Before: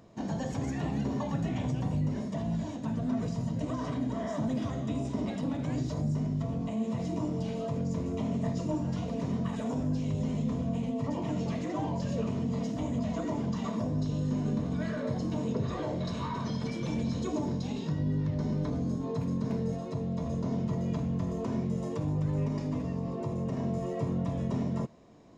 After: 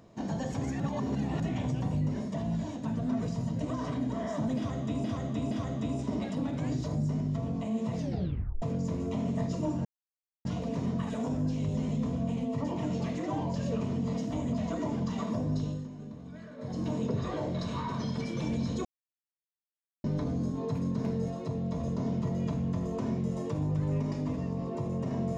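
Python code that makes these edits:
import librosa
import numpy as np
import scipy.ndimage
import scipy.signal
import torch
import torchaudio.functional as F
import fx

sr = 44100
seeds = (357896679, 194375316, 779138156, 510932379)

y = fx.edit(x, sr, fx.reverse_span(start_s=0.8, length_s=0.6),
    fx.repeat(start_s=4.57, length_s=0.47, count=3),
    fx.tape_stop(start_s=7.03, length_s=0.65),
    fx.insert_silence(at_s=8.91, length_s=0.6),
    fx.fade_down_up(start_s=14.07, length_s=1.23, db=-13.0, fade_s=0.27),
    fx.silence(start_s=17.31, length_s=1.19), tone=tone)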